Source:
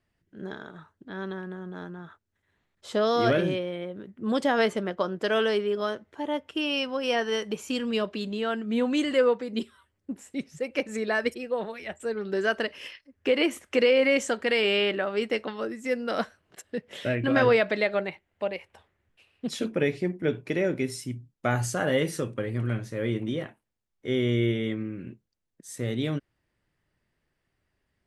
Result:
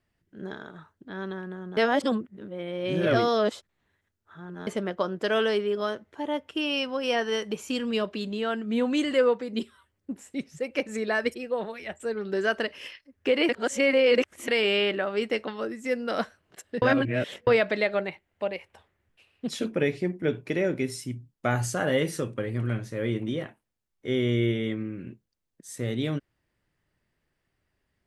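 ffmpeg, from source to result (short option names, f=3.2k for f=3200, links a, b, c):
-filter_complex "[0:a]asplit=7[a][b][c][d][e][f][g];[a]atrim=end=1.772[h];[b]atrim=start=1.768:end=4.672,asetpts=PTS-STARTPTS,areverse[i];[c]atrim=start=4.668:end=13.492[j];[d]atrim=start=13.488:end=14.482,asetpts=PTS-STARTPTS,areverse[k];[e]atrim=start=14.478:end=16.822[l];[f]atrim=start=16.818:end=17.472,asetpts=PTS-STARTPTS,areverse[m];[g]atrim=start=17.468[n];[h][i]acrossfade=d=0.004:c1=hsin:c2=hsin[o];[o][j]acrossfade=d=0.004:c1=hsin:c2=hsin[p];[p][k]acrossfade=d=0.004:c1=hsin:c2=hsin[q];[q][l]acrossfade=d=0.004:c1=hsin:c2=hsin[r];[r][m]acrossfade=d=0.004:c1=hsin:c2=hsin[s];[s][n]acrossfade=d=0.004:c1=hsin:c2=hsin"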